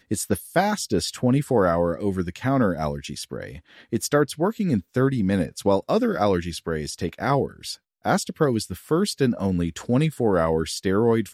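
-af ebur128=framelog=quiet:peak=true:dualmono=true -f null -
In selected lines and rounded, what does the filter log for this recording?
Integrated loudness:
  I:         -20.5 LUFS
  Threshold: -30.7 LUFS
Loudness range:
  LRA:         1.7 LU
  Threshold: -41.1 LUFS
  LRA low:   -21.9 LUFS
  LRA high:  -20.2 LUFS
True peak:
  Peak:       -6.8 dBFS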